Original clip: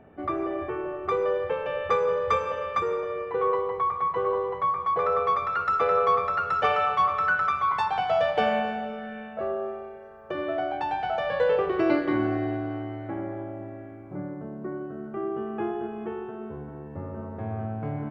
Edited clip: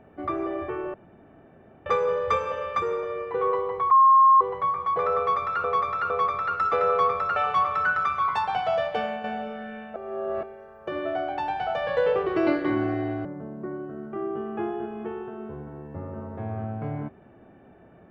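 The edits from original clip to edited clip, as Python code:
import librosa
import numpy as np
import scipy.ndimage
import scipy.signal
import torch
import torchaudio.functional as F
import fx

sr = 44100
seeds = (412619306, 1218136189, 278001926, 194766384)

y = fx.edit(x, sr, fx.room_tone_fill(start_s=0.94, length_s=0.92),
    fx.bleep(start_s=3.91, length_s=0.5, hz=1070.0, db=-12.0),
    fx.repeat(start_s=5.18, length_s=0.46, count=3),
    fx.cut(start_s=6.44, length_s=0.35),
    fx.fade_out_to(start_s=8.0, length_s=0.67, floor_db=-8.5),
    fx.reverse_span(start_s=9.39, length_s=0.47),
    fx.cut(start_s=12.68, length_s=1.58), tone=tone)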